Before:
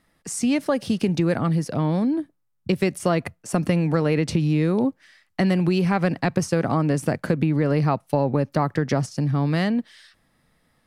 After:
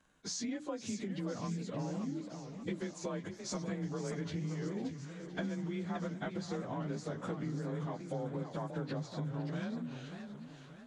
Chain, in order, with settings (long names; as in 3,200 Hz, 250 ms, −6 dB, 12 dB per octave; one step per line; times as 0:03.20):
partials spread apart or drawn together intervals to 91%
mains-hum notches 60/120/180/240/300 Hz
downward compressor 6 to 1, threshold −34 dBFS, peak gain reduction 15.5 dB
on a send: feedback echo with a high-pass in the loop 508 ms, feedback 83%, high-pass 600 Hz, level −15 dB
on the sum: feedback echo with a swinging delay time 579 ms, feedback 42%, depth 219 cents, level −8.5 dB
level −3 dB